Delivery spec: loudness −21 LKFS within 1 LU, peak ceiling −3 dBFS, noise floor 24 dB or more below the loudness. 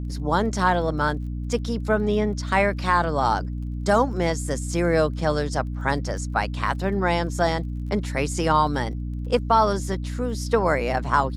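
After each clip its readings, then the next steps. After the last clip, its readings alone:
crackle rate 27 per second; mains hum 60 Hz; hum harmonics up to 300 Hz; level of the hum −27 dBFS; integrated loudness −23.5 LKFS; sample peak −6.0 dBFS; target loudness −21.0 LKFS
→ click removal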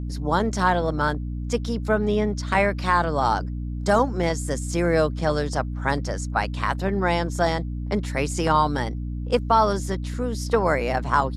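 crackle rate 0 per second; mains hum 60 Hz; hum harmonics up to 300 Hz; level of the hum −27 dBFS
→ mains-hum notches 60/120/180/240/300 Hz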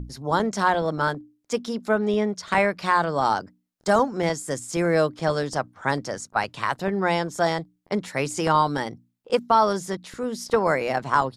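mains hum none found; integrated loudness −24.0 LKFS; sample peak −6.5 dBFS; target loudness −21.0 LKFS
→ level +3 dB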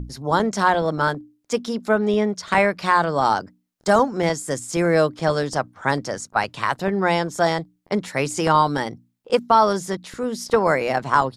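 integrated loudness −21.5 LKFS; sample peak −3.5 dBFS; background noise floor −67 dBFS

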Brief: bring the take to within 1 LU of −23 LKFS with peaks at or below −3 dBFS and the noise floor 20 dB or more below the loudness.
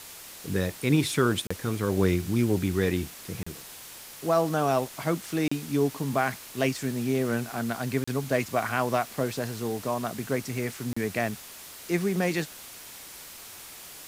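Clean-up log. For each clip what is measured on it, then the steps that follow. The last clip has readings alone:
number of dropouts 5; longest dropout 35 ms; background noise floor −45 dBFS; target noise floor −48 dBFS; integrated loudness −28.0 LKFS; sample peak −9.5 dBFS; target loudness −23.0 LKFS
→ repair the gap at 0:01.47/0:03.43/0:05.48/0:08.04/0:10.93, 35 ms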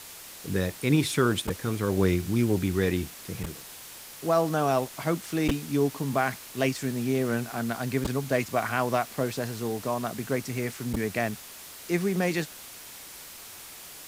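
number of dropouts 0; background noise floor −45 dBFS; target noise floor −48 dBFS
→ broadband denoise 6 dB, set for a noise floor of −45 dBFS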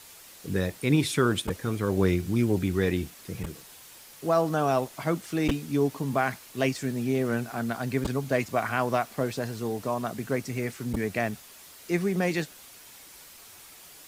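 background noise floor −50 dBFS; integrated loudness −28.0 LKFS; sample peak −9.5 dBFS; target loudness −23.0 LKFS
→ level +5 dB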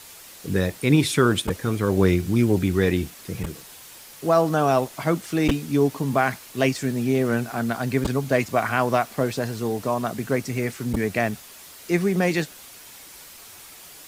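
integrated loudness −23.0 LKFS; sample peak −4.5 dBFS; background noise floor −45 dBFS

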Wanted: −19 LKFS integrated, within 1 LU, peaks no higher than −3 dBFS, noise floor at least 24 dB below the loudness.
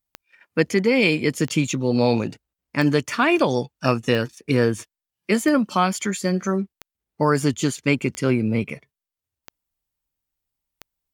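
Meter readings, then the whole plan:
number of clicks 9; integrated loudness −21.5 LKFS; sample peak −4.0 dBFS; target loudness −19.0 LKFS
→ click removal
level +2.5 dB
brickwall limiter −3 dBFS

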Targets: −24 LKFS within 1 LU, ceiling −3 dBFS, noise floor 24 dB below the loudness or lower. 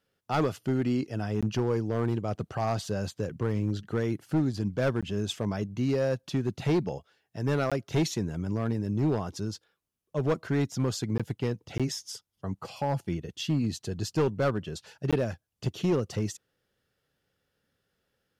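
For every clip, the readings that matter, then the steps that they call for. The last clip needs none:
share of clipped samples 1.5%; peaks flattened at −20.0 dBFS; number of dropouts 6; longest dropout 16 ms; integrated loudness −30.5 LKFS; sample peak −20.0 dBFS; target loudness −24.0 LKFS
→ clipped peaks rebuilt −20 dBFS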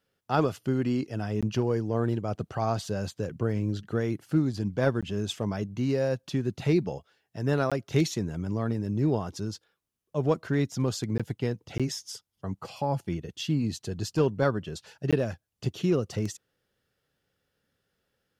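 share of clipped samples 0.0%; number of dropouts 6; longest dropout 16 ms
→ repair the gap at 0:01.41/0:05.01/0:07.70/0:11.18/0:11.78/0:15.11, 16 ms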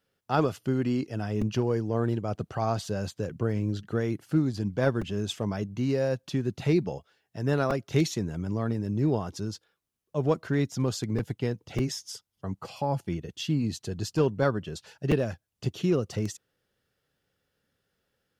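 number of dropouts 0; integrated loudness −29.5 LKFS; sample peak −11.0 dBFS; target loudness −24.0 LKFS
→ level +5.5 dB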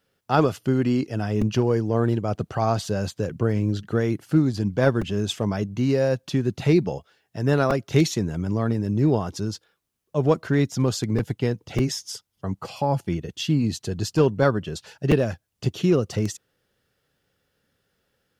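integrated loudness −24.0 LKFS; sample peak −5.5 dBFS; background noise floor −75 dBFS

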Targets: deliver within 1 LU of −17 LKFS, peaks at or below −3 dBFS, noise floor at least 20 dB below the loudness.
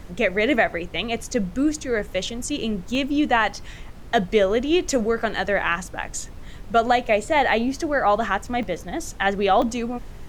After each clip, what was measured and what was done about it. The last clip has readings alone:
number of dropouts 3; longest dropout 1.8 ms; background noise floor −40 dBFS; target noise floor −43 dBFS; integrated loudness −22.5 LKFS; sample peak −6.5 dBFS; target loudness −17.0 LKFS
→ repair the gap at 0:02.95/0:08.63/0:09.62, 1.8 ms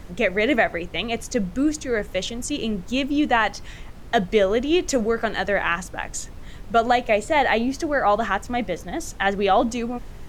number of dropouts 0; background noise floor −40 dBFS; target noise floor −43 dBFS
→ noise reduction from a noise print 6 dB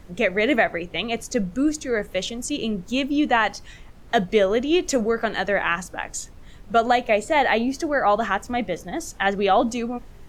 background noise floor −45 dBFS; integrated loudness −22.5 LKFS; sample peak −7.0 dBFS; target loudness −17.0 LKFS
→ level +5.5 dB
brickwall limiter −3 dBFS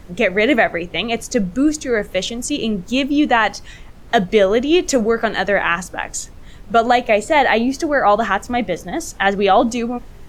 integrated loudness −17.5 LKFS; sample peak −3.0 dBFS; background noise floor −40 dBFS

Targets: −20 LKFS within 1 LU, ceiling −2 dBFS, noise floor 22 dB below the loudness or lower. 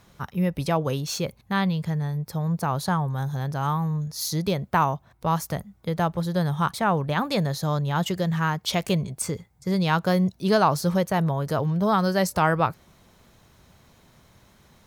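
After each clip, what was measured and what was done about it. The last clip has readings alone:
integrated loudness −25.0 LKFS; sample peak −8.0 dBFS; target loudness −20.0 LKFS
→ level +5 dB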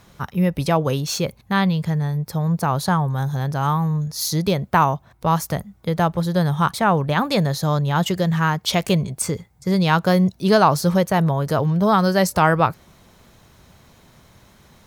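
integrated loudness −20.0 LKFS; sample peak −3.0 dBFS; background noise floor −54 dBFS

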